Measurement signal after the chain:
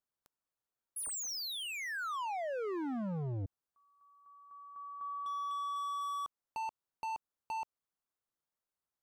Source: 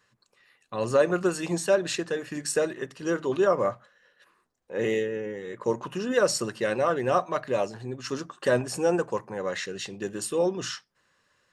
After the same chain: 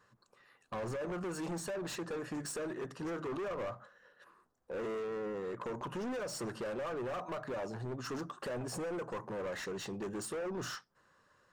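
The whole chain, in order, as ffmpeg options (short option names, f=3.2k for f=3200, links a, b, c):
-af "alimiter=limit=-18.5dB:level=0:latency=1:release=190,asoftclip=type=tanh:threshold=-33dB,highshelf=f=1.7k:t=q:w=1.5:g=-6.5,acompressor=threshold=-36dB:ratio=10,asoftclip=type=hard:threshold=-37.5dB,volume=1.5dB"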